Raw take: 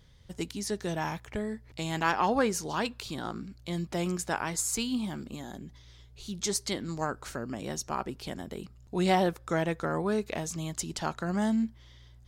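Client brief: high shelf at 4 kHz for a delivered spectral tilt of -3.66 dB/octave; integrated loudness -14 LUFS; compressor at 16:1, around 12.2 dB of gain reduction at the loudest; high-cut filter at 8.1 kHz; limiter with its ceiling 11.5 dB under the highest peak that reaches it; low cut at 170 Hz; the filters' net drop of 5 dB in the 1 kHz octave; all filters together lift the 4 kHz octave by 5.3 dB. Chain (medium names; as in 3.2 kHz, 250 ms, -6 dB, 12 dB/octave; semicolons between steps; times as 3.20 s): high-pass 170 Hz; low-pass 8.1 kHz; peaking EQ 1 kHz -7.5 dB; treble shelf 4 kHz +6.5 dB; peaking EQ 4 kHz +3.5 dB; compression 16:1, threshold -34 dBFS; trim +28 dB; peak limiter -3 dBFS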